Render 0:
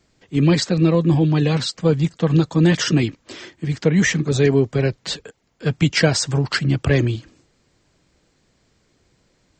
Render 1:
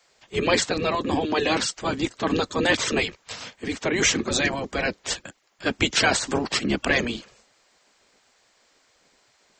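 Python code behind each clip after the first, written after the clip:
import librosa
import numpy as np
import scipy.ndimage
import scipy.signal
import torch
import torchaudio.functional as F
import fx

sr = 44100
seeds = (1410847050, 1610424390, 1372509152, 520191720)

y = fx.spec_gate(x, sr, threshold_db=-10, keep='weak')
y = y * librosa.db_to_amplitude(4.5)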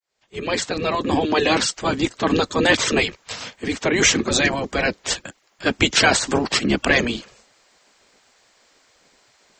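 y = fx.fade_in_head(x, sr, length_s=1.19)
y = y * librosa.db_to_amplitude(4.5)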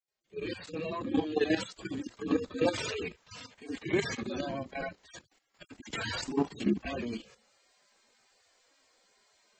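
y = fx.hpss_only(x, sr, part='harmonic')
y = fx.level_steps(y, sr, step_db=11)
y = y * librosa.db_to_amplitude(-2.5)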